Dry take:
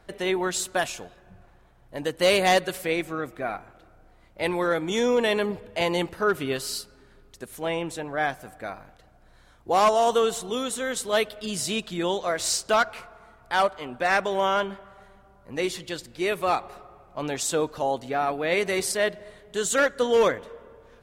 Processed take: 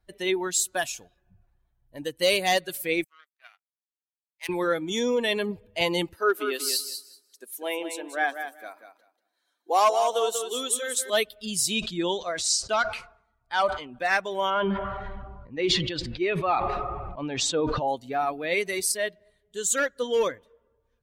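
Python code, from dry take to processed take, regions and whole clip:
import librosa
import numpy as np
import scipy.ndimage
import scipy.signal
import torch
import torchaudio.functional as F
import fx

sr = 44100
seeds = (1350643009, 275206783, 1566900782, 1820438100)

y = fx.chain(x, sr, fx.power_curve(exponent=2.0),
    fx.highpass(hz=1100.0, slope=12), at=(3.04, 4.49))
y = fx.chain(y, sr, fx.highpass(hz=280.0, slope=24),
    fx.echo_feedback(ms=188, feedback_pct=29, wet_db=-6.0), at=(6.16, 11.1))
y = fx.chain(y, sr, fx.lowpass(hz=8600.0, slope=12),
    fx.sustainer(db_per_s=73.0), at=(11.74, 13.99))
y = fx.chain(y, sr, fx.lowpass(hz=3100.0, slope=12),
    fx.sustainer(db_per_s=20.0), at=(14.5, 17.88))
y = fx.bin_expand(y, sr, power=1.5)
y = fx.high_shelf(y, sr, hz=3300.0, db=9.0)
y = fx.rider(y, sr, range_db=3, speed_s=0.5)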